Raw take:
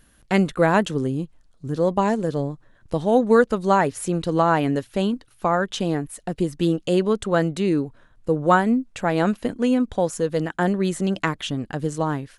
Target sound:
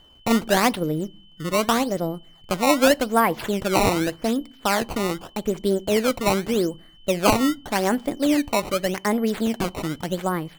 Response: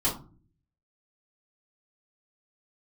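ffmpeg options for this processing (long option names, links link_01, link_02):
-filter_complex "[0:a]acrusher=samples=18:mix=1:aa=0.000001:lfo=1:lforange=28.8:lforate=0.72,aeval=exprs='val(0)+0.00282*sin(2*PI*2600*n/s)':channel_layout=same,asetrate=51597,aresample=44100,asplit=2[link_01][link_02];[1:a]atrim=start_sample=2205,asetrate=38808,aresample=44100[link_03];[link_02][link_03]afir=irnorm=-1:irlink=0,volume=-30.5dB[link_04];[link_01][link_04]amix=inputs=2:normalize=0,volume=-1dB"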